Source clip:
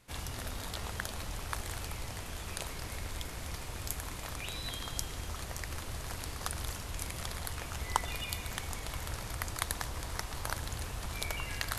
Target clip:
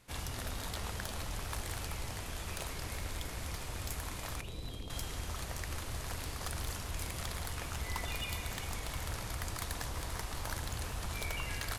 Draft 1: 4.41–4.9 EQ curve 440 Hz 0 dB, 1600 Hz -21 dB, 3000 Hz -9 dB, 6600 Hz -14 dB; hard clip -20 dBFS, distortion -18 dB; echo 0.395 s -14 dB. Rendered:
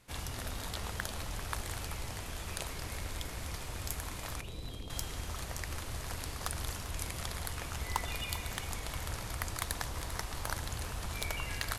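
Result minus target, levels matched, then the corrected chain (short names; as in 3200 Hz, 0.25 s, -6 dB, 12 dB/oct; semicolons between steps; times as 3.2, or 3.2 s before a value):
hard clip: distortion -7 dB
4.41–4.9 EQ curve 440 Hz 0 dB, 1600 Hz -21 dB, 3000 Hz -9 dB, 6600 Hz -14 dB; hard clip -30.5 dBFS, distortion -11 dB; echo 0.395 s -14 dB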